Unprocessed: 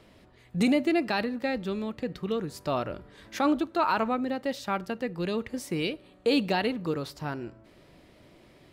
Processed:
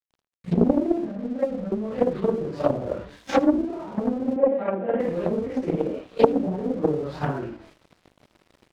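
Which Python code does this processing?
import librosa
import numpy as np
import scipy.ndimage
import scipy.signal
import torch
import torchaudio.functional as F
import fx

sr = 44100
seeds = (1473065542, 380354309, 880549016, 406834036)

p1 = fx.phase_scramble(x, sr, seeds[0], window_ms=200)
p2 = fx.env_lowpass_down(p1, sr, base_hz=320.0, full_db=-25.0)
p3 = fx.dynamic_eq(p2, sr, hz=520.0, q=2.2, threshold_db=-46.0, ratio=4.0, max_db=6)
p4 = fx.transient(p3, sr, attack_db=12, sustain_db=8)
p5 = fx.rider(p4, sr, range_db=5, speed_s=2.0)
p6 = p4 + (p5 * librosa.db_to_amplitude(2.0))
p7 = fx.fixed_phaser(p6, sr, hz=580.0, stages=8, at=(1.07, 1.72))
p8 = np.sign(p7) * np.maximum(np.abs(p7) - 10.0 ** (-41.0 / 20.0), 0.0)
p9 = fx.cabinet(p8, sr, low_hz=200.0, low_slope=24, high_hz=2500.0, hz=(210.0, 520.0, 1100.0), db=(6, 6, -9), at=(4.36, 5.0))
p10 = p9 + fx.echo_single(p9, sr, ms=79, db=-19.0, dry=0)
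p11 = fx.doppler_dist(p10, sr, depth_ms=0.96)
y = p11 * librosa.db_to_amplitude(-6.0)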